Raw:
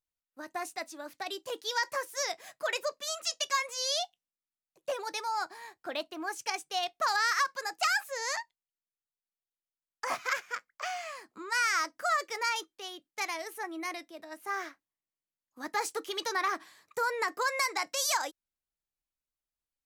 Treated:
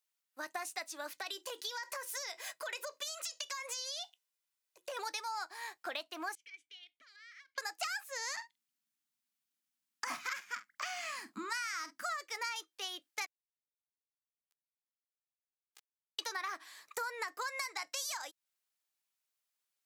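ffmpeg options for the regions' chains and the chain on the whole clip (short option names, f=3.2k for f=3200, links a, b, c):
-filter_complex "[0:a]asettb=1/sr,asplit=3[a][b][c];[a]atrim=end=1.114[d];[b]atrim=start=1.11:end=4.97,asetpts=PTS-STARTPTS,afade=t=in:d=0.004:c=qsin,afade=t=out:st=3.856:d=0.004:c=qsin,bandreject=f=60:t=h:w=6,bandreject=f=120:t=h:w=6,bandreject=f=180:t=h:w=6,bandreject=f=240:t=h:w=6,bandreject=f=300:t=h:w=6,bandreject=f=360:t=h:w=6,aecho=1:1:2:0.37,atrim=end_sample=170226,acompressor=threshold=-39dB:ratio=6:attack=3.2:release=140:knee=1:detection=peak[e];[c]atrim=start=4.966[f];[d][e]acrossfade=d=0.004:c1=hsin:c2=qsin[g];[g][f]acrossfade=d=0.004:c1=qsin:c2=hsin,asettb=1/sr,asplit=3[h][i][j];[h]atrim=end=6.354[k];[i]atrim=start=6.35:end=7.58,asetpts=PTS-STARTPTS,afade=t=in:d=0.004:c=qsin,afade=t=out:st=1.226:d=0.004:c=qsin,lowshelf=f=370:g=-10.5,acompressor=threshold=-45dB:ratio=3:attack=3.2:release=140:knee=1:detection=peak,asplit=3[l][m][n];[l]bandpass=f=270:t=q:w=8,volume=0dB[o];[m]bandpass=f=2.29k:t=q:w=8,volume=-6dB[p];[n]bandpass=f=3.01k:t=q:w=8,volume=-9dB[q];[o][p][q]amix=inputs=3:normalize=0[r];[j]atrim=start=7.576[s];[k][r]acrossfade=d=0.004:c1=hsin:c2=qsin[t];[t][s]acrossfade=d=0.004:c1=qsin:c2=hsin,asettb=1/sr,asplit=3[u][v][w];[u]atrim=end=8.334[x];[v]atrim=start=8.33:end=12.09,asetpts=PTS-STARTPTS,afade=t=in:d=0.004:c=qsin,afade=t=out:st=3.756:d=0.004:c=qsin,lowshelf=f=340:t=q:w=3:g=11.5,asplit=2[y][z];[z]adelay=46,volume=-14dB[aa];[y][aa]amix=inputs=2:normalize=0,atrim=end_sample=165816[ab];[w]atrim=start=12.086[ac];[x][ab]acrossfade=d=0.004:c1=hsin:c2=qsin[ad];[ad][ac]acrossfade=d=0.004:c1=qsin:c2=hsin,asettb=1/sr,asplit=3[ae][af][ag];[ae]atrim=end=13.264[ah];[af]atrim=start=13.26:end=16.19,asetpts=PTS-STARTPTS,afade=t=in:d=0.004:c=qsin,afade=t=out:st=2.926:d=0.004:c=qsin,aeval=exprs='val(0)+0.5*0.0224*sgn(val(0))':c=same,highpass=810,acrusher=bits=2:mix=0:aa=0.5[ai];[ag]atrim=start=16.186[aj];[ah][ai]acrossfade=d=0.004:c1=hsin:c2=qsin[ak];[ak][aj]acrossfade=d=0.004:c1=qsin:c2=hsin,highpass=f=1.2k:p=1,acompressor=threshold=-44dB:ratio=6,volume=7dB"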